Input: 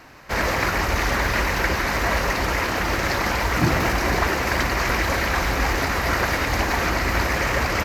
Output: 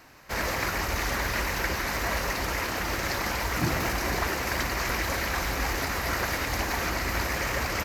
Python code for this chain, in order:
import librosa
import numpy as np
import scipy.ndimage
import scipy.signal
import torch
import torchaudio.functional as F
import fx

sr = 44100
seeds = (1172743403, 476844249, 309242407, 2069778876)

y = fx.high_shelf(x, sr, hz=5600.0, db=8.5)
y = y * 10.0 ** (-7.5 / 20.0)